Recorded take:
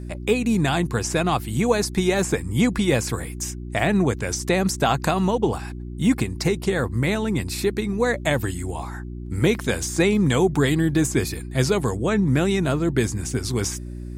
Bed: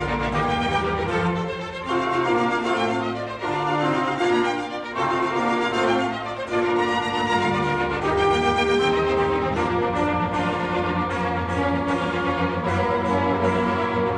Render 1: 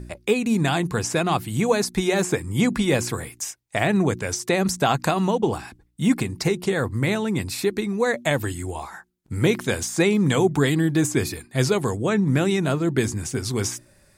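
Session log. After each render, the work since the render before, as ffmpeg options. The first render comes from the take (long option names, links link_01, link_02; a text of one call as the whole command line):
ffmpeg -i in.wav -af "bandreject=frequency=60:width_type=h:width=4,bandreject=frequency=120:width_type=h:width=4,bandreject=frequency=180:width_type=h:width=4,bandreject=frequency=240:width_type=h:width=4,bandreject=frequency=300:width_type=h:width=4,bandreject=frequency=360:width_type=h:width=4" out.wav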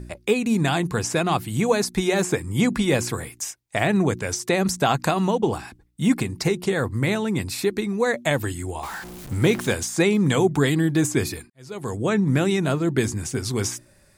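ffmpeg -i in.wav -filter_complex "[0:a]asettb=1/sr,asplit=3[link_01][link_02][link_03];[link_01]atrim=end=8.834[link_04];[link_02]atrim=start=8.83:end=9.73,asetpts=PTS-STARTPTS,afade=type=in:duration=0.004:curve=qsin,afade=type=out:start_time=0.896:duration=0.004:curve=qsin,aeval=exprs='val(0)+0.5*0.0251*sgn(val(0))':channel_layout=same[link_05];[link_03]atrim=start=9.726[link_06];[link_04][link_05]acrossfade=duration=0.004:curve1=hsin:curve2=qsin[link_07];[link_07][link_06]acrossfade=duration=0.004:curve1=qsin:curve2=hsin,asplit=2[link_08][link_09];[link_08]atrim=end=11.5,asetpts=PTS-STARTPTS,afade=type=out:start_time=11.496:duration=0.004:curve=hsin[link_10];[link_09]atrim=start=11.5,asetpts=PTS-STARTPTS,afade=type=in:duration=0.5:curve=qua[link_11];[link_10][link_11]concat=n=2:v=0:a=1" out.wav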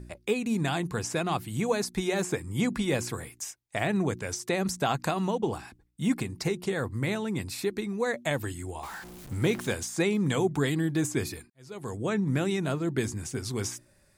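ffmpeg -i in.wav -af "volume=-7dB" out.wav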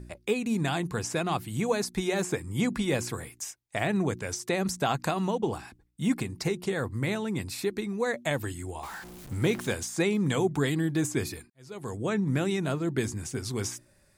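ffmpeg -i in.wav -af anull out.wav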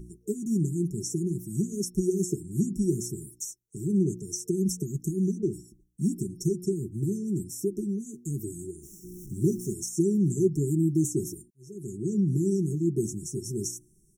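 ffmpeg -i in.wav -af "afftfilt=real='re*(1-between(b*sr/4096,450,5400))':imag='im*(1-between(b*sr/4096,450,5400))':win_size=4096:overlap=0.75,aecho=1:1:5.7:0.67" out.wav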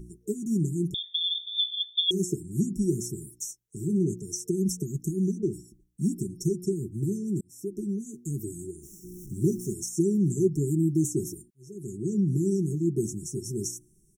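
ffmpeg -i in.wav -filter_complex "[0:a]asettb=1/sr,asplit=3[link_01][link_02][link_03];[link_01]atrim=end=0.944[link_04];[link_02]atrim=start=0.94:end=2.11,asetpts=PTS-STARTPTS,afade=type=in:duration=0.004:curve=qsin,afade=type=out:start_time=1.166:duration=0.004:curve=qsin,lowpass=frequency=3100:width_type=q:width=0.5098,lowpass=frequency=3100:width_type=q:width=0.6013,lowpass=frequency=3100:width_type=q:width=0.9,lowpass=frequency=3100:width_type=q:width=2.563,afreqshift=-3700[link_05];[link_03]atrim=start=2.106[link_06];[link_04][link_05]acrossfade=duration=0.004:curve1=hsin:curve2=qsin[link_07];[link_07][link_06]acrossfade=duration=0.004:curve1=qsin:curve2=hsin,asplit=3[link_08][link_09][link_10];[link_08]afade=type=out:start_time=3.38:duration=0.02[link_11];[link_09]asplit=2[link_12][link_13];[link_13]adelay=18,volume=-10dB[link_14];[link_12][link_14]amix=inputs=2:normalize=0,afade=type=in:start_time=3.38:duration=0.02,afade=type=out:start_time=4.14:duration=0.02[link_15];[link_10]afade=type=in:start_time=4.14:duration=0.02[link_16];[link_11][link_15][link_16]amix=inputs=3:normalize=0,asplit=2[link_17][link_18];[link_17]atrim=end=7.41,asetpts=PTS-STARTPTS,afade=type=out:start_time=7.406:duration=0.004:curve=hsin[link_19];[link_18]atrim=start=7.41,asetpts=PTS-STARTPTS,afade=type=in:duration=0.49[link_20];[link_19][link_20]concat=n=2:v=0:a=1" out.wav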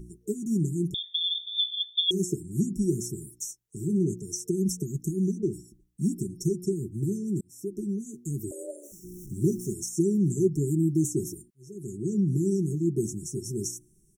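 ffmpeg -i in.wav -filter_complex "[0:a]asettb=1/sr,asplit=3[link_01][link_02][link_03];[link_01]atrim=end=8.514[link_04];[link_02]atrim=start=8.51:end=8.92,asetpts=PTS-STARTPTS,afade=type=in:duration=0.004:curve=qsin,afade=type=out:start_time=0.406:duration=0.004:curve=qsin,afreqshift=220[link_05];[link_03]atrim=start=8.916[link_06];[link_04][link_05]acrossfade=duration=0.004:curve1=hsin:curve2=qsin[link_07];[link_07][link_06]acrossfade=duration=0.004:curve1=qsin:curve2=hsin" out.wav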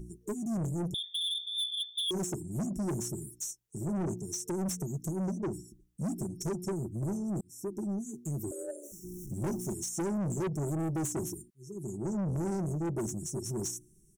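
ffmpeg -i in.wav -af "asoftclip=type=tanh:threshold=-29.5dB" out.wav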